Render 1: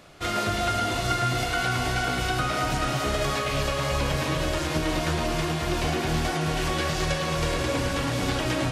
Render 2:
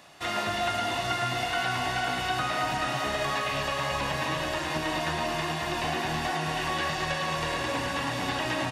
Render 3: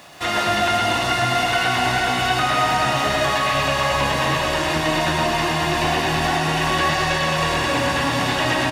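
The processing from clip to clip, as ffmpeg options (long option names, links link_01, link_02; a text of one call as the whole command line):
ffmpeg -i in.wav -filter_complex "[0:a]highpass=frequency=410:poles=1,acrossover=split=3700[link_01][link_02];[link_02]acompressor=threshold=-42dB:ratio=4:attack=1:release=60[link_03];[link_01][link_03]amix=inputs=2:normalize=0,aecho=1:1:1.1:0.43" out.wav
ffmpeg -i in.wav -filter_complex "[0:a]asplit=2[link_01][link_02];[link_02]asoftclip=type=hard:threshold=-26dB,volume=-6dB[link_03];[link_01][link_03]amix=inputs=2:normalize=0,acrusher=bits=9:mix=0:aa=0.000001,aecho=1:1:126:0.596,volume=5dB" out.wav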